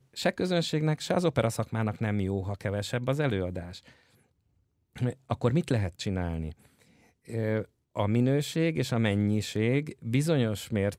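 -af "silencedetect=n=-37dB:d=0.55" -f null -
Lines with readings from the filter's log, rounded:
silence_start: 3.78
silence_end: 4.96 | silence_duration: 1.18
silence_start: 6.52
silence_end: 7.30 | silence_duration: 0.78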